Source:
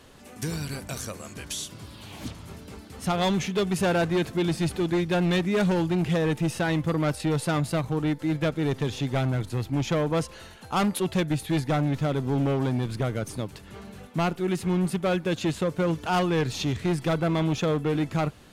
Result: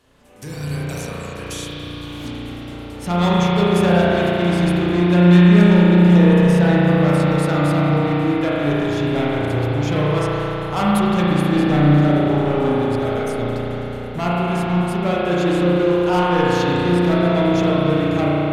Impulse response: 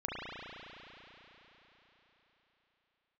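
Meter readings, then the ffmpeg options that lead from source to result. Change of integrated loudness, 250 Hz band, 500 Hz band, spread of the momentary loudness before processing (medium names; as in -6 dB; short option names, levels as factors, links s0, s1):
+10.0 dB, +11.0 dB, +9.0 dB, 13 LU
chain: -filter_complex "[0:a]dynaudnorm=f=340:g=3:m=2.82[s0];[1:a]atrim=start_sample=2205[s1];[s0][s1]afir=irnorm=-1:irlink=0,volume=0.501"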